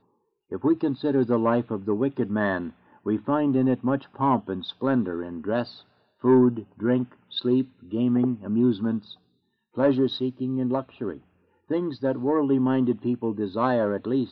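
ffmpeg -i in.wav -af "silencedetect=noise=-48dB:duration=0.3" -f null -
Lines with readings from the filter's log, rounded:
silence_start: 0.00
silence_end: 0.51 | silence_duration: 0.51
silence_start: 5.82
silence_end: 6.22 | silence_duration: 0.39
silence_start: 9.15
silence_end: 9.75 | silence_duration: 0.61
silence_start: 11.21
silence_end: 11.69 | silence_duration: 0.48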